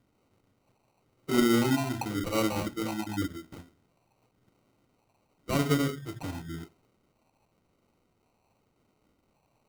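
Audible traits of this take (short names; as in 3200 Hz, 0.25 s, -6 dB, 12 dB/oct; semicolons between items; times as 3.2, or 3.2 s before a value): phasing stages 6, 0.92 Hz, lowest notch 420–1200 Hz; aliases and images of a low sample rate 1700 Hz, jitter 0%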